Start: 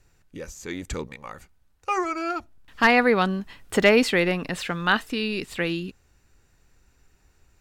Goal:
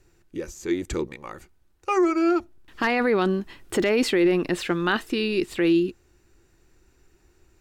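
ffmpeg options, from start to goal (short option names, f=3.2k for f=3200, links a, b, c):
-af "equalizer=f=350:w=4.1:g=14,alimiter=limit=-13dB:level=0:latency=1:release=16"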